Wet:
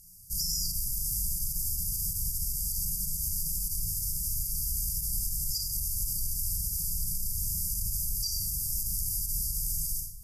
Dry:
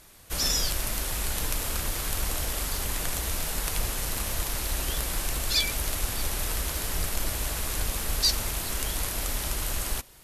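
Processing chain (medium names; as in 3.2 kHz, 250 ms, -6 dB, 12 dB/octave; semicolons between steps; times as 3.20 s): on a send at -2 dB: reverberation RT60 0.70 s, pre-delay 28 ms; on the sum: peak limiter -19 dBFS, peak gain reduction 10.5 dB; FFT band-reject 200–4600 Hz; treble shelf 12 kHz +11.5 dB; trim -3 dB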